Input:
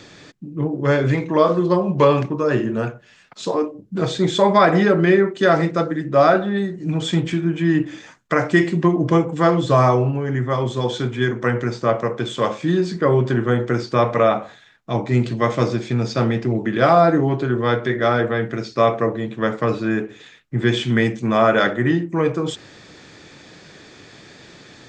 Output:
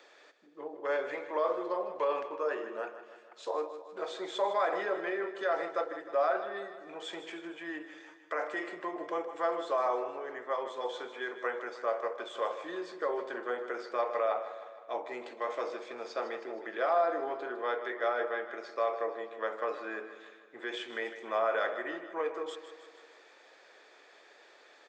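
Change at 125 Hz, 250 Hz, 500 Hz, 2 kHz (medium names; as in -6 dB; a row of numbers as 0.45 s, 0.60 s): under -40 dB, -25.0 dB, -14.0 dB, -13.5 dB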